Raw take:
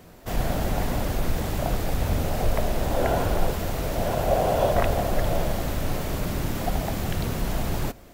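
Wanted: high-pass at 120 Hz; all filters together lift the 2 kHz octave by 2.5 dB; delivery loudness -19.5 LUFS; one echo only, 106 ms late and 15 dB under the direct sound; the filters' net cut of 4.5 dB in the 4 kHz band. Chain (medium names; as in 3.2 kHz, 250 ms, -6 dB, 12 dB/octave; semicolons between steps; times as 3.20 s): high-pass 120 Hz; peaking EQ 2 kHz +5 dB; peaking EQ 4 kHz -8 dB; delay 106 ms -15 dB; trim +8.5 dB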